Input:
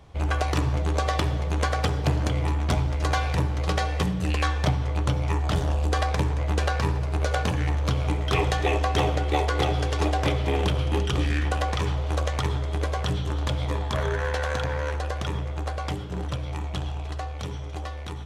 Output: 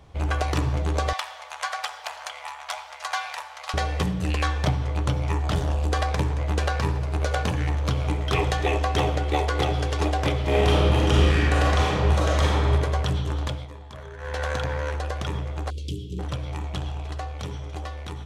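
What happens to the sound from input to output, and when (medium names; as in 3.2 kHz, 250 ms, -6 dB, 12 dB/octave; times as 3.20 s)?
1.13–3.74 s: inverse Chebyshev high-pass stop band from 370 Hz
10.42–12.70 s: reverb throw, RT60 1.7 s, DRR -5 dB
13.42–14.44 s: dip -14 dB, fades 0.27 s
15.70–16.19 s: elliptic band-stop 400–3000 Hz
16.80–17.78 s: short-mantissa float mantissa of 8-bit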